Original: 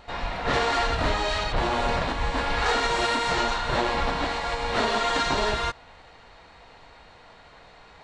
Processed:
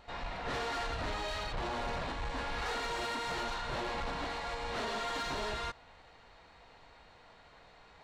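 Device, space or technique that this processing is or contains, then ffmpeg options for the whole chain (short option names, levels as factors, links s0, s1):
saturation between pre-emphasis and de-emphasis: -af "highshelf=f=5300:g=7.5,asoftclip=type=tanh:threshold=0.0668,highshelf=f=5300:g=-7.5,volume=0.398"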